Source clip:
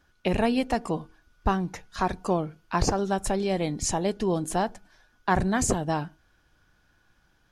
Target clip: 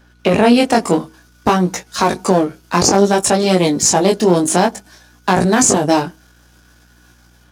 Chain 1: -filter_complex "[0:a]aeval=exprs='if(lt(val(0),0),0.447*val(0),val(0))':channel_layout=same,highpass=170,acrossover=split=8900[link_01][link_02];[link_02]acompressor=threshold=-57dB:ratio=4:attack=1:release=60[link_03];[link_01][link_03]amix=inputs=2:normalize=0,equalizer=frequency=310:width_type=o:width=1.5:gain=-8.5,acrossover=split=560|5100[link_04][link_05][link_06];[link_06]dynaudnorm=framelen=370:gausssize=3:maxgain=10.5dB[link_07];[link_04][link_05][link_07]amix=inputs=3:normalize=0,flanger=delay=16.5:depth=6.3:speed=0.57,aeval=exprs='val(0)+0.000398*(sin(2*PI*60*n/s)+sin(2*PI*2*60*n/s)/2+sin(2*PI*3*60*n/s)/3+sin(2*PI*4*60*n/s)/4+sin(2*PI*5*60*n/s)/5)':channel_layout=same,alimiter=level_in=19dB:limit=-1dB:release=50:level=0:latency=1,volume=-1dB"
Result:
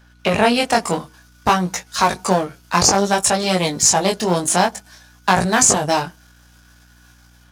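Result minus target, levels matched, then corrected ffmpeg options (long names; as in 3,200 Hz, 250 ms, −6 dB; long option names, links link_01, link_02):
250 Hz band −4.5 dB
-filter_complex "[0:a]aeval=exprs='if(lt(val(0),0),0.447*val(0),val(0))':channel_layout=same,highpass=170,acrossover=split=8900[link_01][link_02];[link_02]acompressor=threshold=-57dB:ratio=4:attack=1:release=60[link_03];[link_01][link_03]amix=inputs=2:normalize=0,equalizer=frequency=310:width_type=o:width=1.5:gain=2.5,acrossover=split=560|5100[link_04][link_05][link_06];[link_06]dynaudnorm=framelen=370:gausssize=3:maxgain=10.5dB[link_07];[link_04][link_05][link_07]amix=inputs=3:normalize=0,flanger=delay=16.5:depth=6.3:speed=0.57,aeval=exprs='val(0)+0.000398*(sin(2*PI*60*n/s)+sin(2*PI*2*60*n/s)/2+sin(2*PI*3*60*n/s)/3+sin(2*PI*4*60*n/s)/4+sin(2*PI*5*60*n/s)/5)':channel_layout=same,alimiter=level_in=19dB:limit=-1dB:release=50:level=0:latency=1,volume=-1dB"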